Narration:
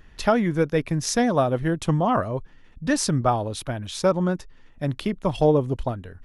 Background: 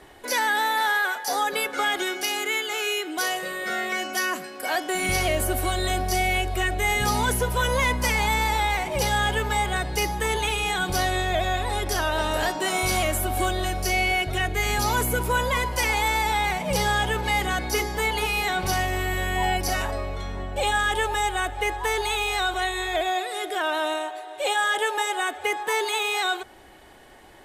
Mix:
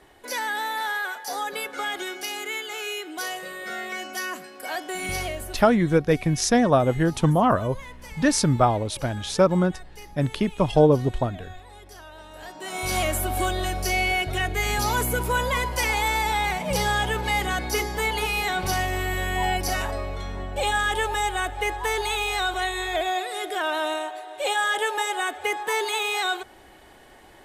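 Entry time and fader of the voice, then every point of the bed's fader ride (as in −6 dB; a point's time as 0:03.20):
5.35 s, +2.0 dB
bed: 0:05.21 −5 dB
0:05.77 −19.5 dB
0:12.31 −19.5 dB
0:12.98 −0.5 dB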